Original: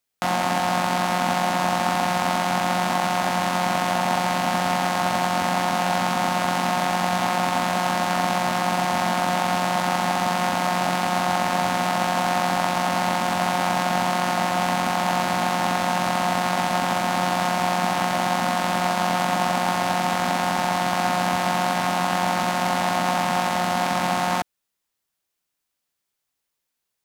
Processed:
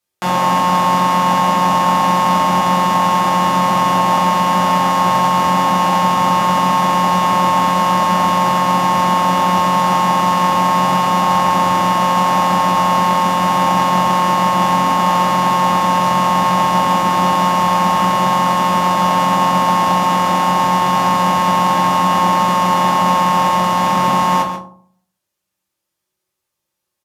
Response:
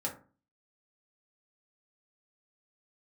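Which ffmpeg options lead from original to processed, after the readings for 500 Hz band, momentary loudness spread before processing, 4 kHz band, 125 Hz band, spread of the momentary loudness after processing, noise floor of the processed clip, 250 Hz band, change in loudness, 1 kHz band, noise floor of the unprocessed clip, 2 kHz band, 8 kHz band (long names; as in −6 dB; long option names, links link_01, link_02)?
+5.5 dB, 1 LU, +5.5 dB, +8.5 dB, 1 LU, −78 dBFS, +7.5 dB, +8.5 dB, +10.0 dB, −80 dBFS, +2.5 dB, +4.0 dB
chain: -filter_complex "[0:a]asplit=2[link_01][link_02];[link_02]adelay=139.9,volume=-9dB,highshelf=frequency=4000:gain=-3.15[link_03];[link_01][link_03]amix=inputs=2:normalize=0[link_04];[1:a]atrim=start_sample=2205,asetrate=29547,aresample=44100[link_05];[link_04][link_05]afir=irnorm=-1:irlink=0"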